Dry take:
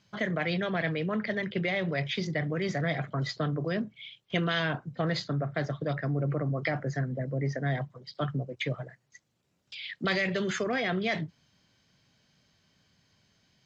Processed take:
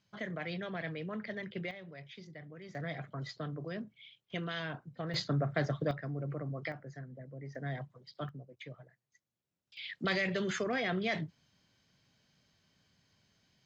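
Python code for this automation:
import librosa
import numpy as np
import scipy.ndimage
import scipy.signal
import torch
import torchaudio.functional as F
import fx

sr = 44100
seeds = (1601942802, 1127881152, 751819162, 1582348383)

y = fx.gain(x, sr, db=fx.steps((0.0, -9.5), (1.71, -19.0), (2.75, -10.0), (5.14, -1.0), (5.91, -9.0), (6.72, -15.5), (7.55, -9.0), (8.29, -16.0), (9.77, -4.0)))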